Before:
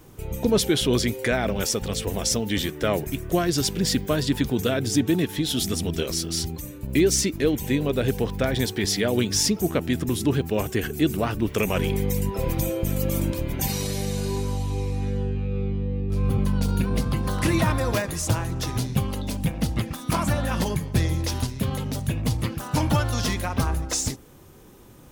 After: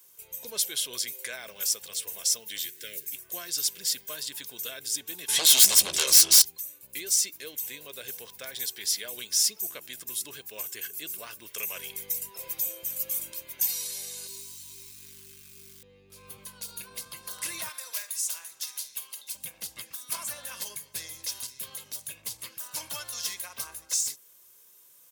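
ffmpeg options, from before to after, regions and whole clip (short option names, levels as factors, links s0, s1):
-filter_complex "[0:a]asettb=1/sr,asplit=3[s0][s1][s2];[s0]atrim=end=2.614[s3];[s1]atrim=start=2.61:end=3.16,asetpts=PTS-STARTPTS,afade=t=in:d=0.004:c=qsin,afade=t=out:st=0.546:d=0.004:c=qsin,asuperstop=centerf=890:order=8:qfactor=0.84,equalizer=f=83:w=4.8:g=5.5,acrusher=bits=9:dc=4:mix=0:aa=0.000001[s4];[s2]atrim=start=3.156[s5];[s3][s4]acrossfade=d=0.004:c1=hsin:c2=qsin[s6];[s6][s5]acrossfade=d=0.004:c1=qsin:c2=hsin,asettb=1/sr,asplit=3[s7][s8][s9];[s7]atrim=end=5.284[s10];[s8]atrim=start=5.28:end=6.42,asetpts=PTS-STARTPTS,afade=t=in:d=0.004:c=qsin,afade=t=out:st=1.136:d=0.004:c=qsin,lowpass=f=9600:w=0.5412,lowpass=f=9600:w=1.3066,aeval=exprs='0.316*sin(PI/2*5.01*val(0)/0.316)':c=same,asplit=2[s11][s12];[s12]adelay=15,volume=0.282[s13];[s11][s13]amix=inputs=2:normalize=0,atrim=end_sample=50274[s14];[s9]atrim=start=6.416[s15];[s10][s14]acrossfade=d=0.004:c1=hsin:c2=qsin[s16];[s16][s15]acrossfade=d=0.004:c1=qsin:c2=hsin,asettb=1/sr,asplit=3[s17][s18][s19];[s17]atrim=end=14.274[s20];[s18]atrim=start=14.27:end=15.83,asetpts=PTS-STARTPTS,afade=t=in:d=0.004:c=qsin,afade=t=out:st=1.556:d=0.004:c=qsin,equalizer=f=1400:t=o:w=1.1:g=-9,acrusher=bits=6:mode=log:mix=0:aa=0.000001,asuperstop=centerf=650:order=20:qfactor=1.1[s21];[s19]atrim=start=15.826[s22];[s20][s21]acrossfade=d=0.004:c1=hsin:c2=qsin[s23];[s23][s22]acrossfade=d=0.004:c1=qsin:c2=hsin,asettb=1/sr,asplit=3[s24][s25][s26];[s24]atrim=end=17.694[s27];[s25]atrim=start=17.69:end=19.35,asetpts=PTS-STARTPTS,afade=t=in:d=0.004:c=qsin,afade=t=out:st=1.656:d=0.004:c=qsin,highpass=f=1400:p=1,asplit=2[s28][s29];[s29]adelay=48,volume=0.224[s30];[s28][s30]amix=inputs=2:normalize=0,atrim=end_sample=73206[s31];[s26]atrim=start=19.346[s32];[s27][s31]acrossfade=d=0.004:c1=hsin:c2=qsin[s33];[s33][s32]acrossfade=d=0.004:c1=qsin:c2=hsin,aderivative,aecho=1:1:1.9:0.35"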